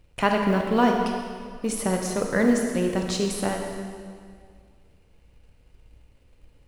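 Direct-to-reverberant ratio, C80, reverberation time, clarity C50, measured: 1.5 dB, 4.5 dB, 2.0 s, 3.0 dB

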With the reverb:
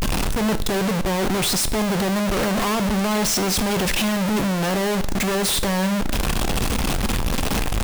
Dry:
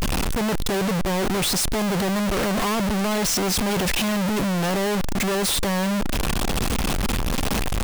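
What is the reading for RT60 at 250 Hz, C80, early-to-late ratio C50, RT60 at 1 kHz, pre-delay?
0.60 s, 18.5 dB, 15.5 dB, 0.55 s, 10 ms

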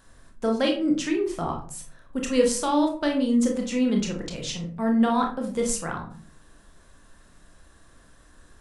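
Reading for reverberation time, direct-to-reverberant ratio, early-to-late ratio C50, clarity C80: 0.45 s, 1.0 dB, 7.5 dB, 13.0 dB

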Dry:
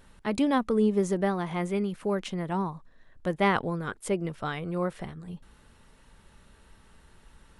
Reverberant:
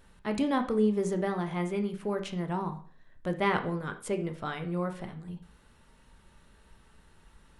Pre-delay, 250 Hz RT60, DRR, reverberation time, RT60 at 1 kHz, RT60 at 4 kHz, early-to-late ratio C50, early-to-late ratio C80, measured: 8 ms, 0.45 s, 6.0 dB, 0.45 s, 0.45 s, 0.40 s, 12.0 dB, 16.5 dB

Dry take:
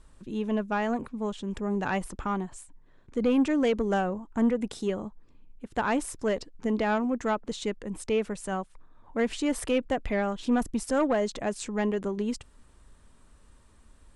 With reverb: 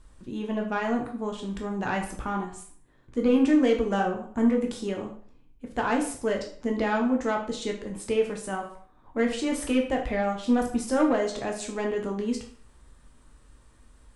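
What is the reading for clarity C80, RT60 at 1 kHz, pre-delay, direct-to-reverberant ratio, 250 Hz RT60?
11.5 dB, 0.50 s, 8 ms, 1.0 dB, 0.45 s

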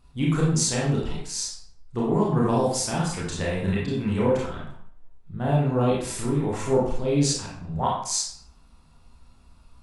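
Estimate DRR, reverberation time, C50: −5.5 dB, 0.60 s, 1.5 dB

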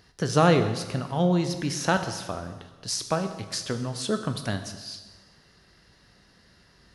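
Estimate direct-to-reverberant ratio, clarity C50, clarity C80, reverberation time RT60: 7.0 dB, 9.5 dB, 11.0 dB, 1.3 s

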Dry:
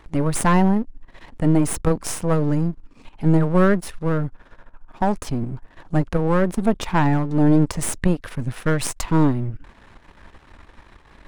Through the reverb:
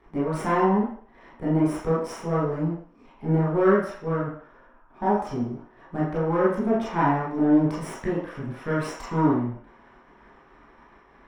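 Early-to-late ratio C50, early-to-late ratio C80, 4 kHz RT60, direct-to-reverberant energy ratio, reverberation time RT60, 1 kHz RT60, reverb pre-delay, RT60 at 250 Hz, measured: 1.5 dB, 6.0 dB, 0.55 s, −9.5 dB, 0.55 s, 0.55 s, 14 ms, 0.40 s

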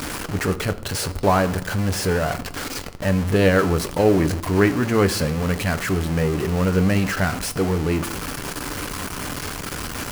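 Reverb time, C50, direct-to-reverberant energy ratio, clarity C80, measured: 0.75 s, 16.5 dB, 9.0 dB, 20.0 dB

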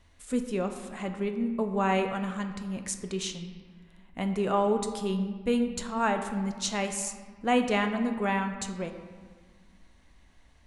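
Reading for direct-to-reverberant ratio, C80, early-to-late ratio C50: 6.0 dB, 9.5 dB, 8.0 dB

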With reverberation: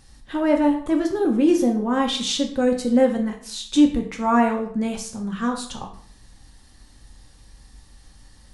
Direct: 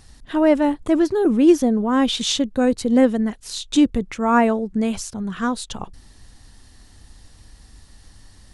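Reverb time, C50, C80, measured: 0.55 s, 8.5 dB, 12.0 dB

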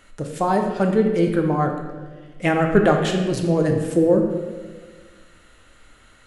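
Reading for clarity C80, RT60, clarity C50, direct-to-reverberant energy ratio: 6.5 dB, 1.5 s, 4.5 dB, 2.0 dB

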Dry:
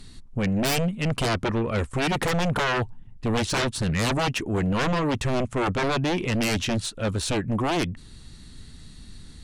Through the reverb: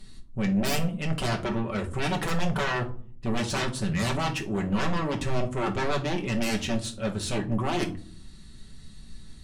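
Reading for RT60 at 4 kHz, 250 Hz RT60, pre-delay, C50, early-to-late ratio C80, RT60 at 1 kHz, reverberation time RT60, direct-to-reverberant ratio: 0.25 s, 0.75 s, 5 ms, 13.5 dB, 19.0 dB, 0.40 s, 0.50 s, 0.5 dB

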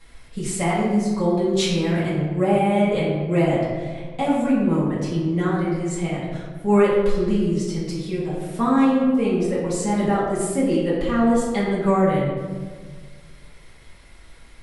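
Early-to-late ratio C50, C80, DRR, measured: 0.0 dB, 2.5 dB, −10.0 dB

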